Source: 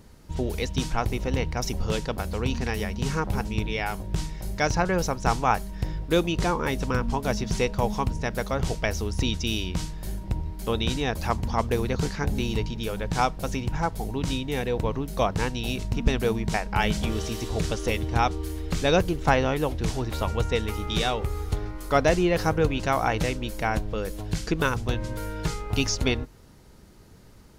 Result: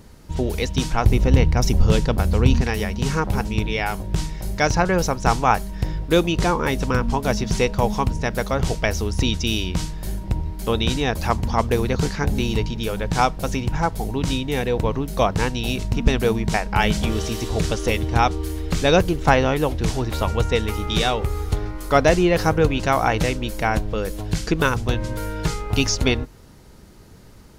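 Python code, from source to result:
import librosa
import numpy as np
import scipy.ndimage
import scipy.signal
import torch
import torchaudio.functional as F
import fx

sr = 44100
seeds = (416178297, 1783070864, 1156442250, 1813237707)

y = fx.low_shelf(x, sr, hz=250.0, db=8.5, at=(1.04, 2.62))
y = y * 10.0 ** (5.0 / 20.0)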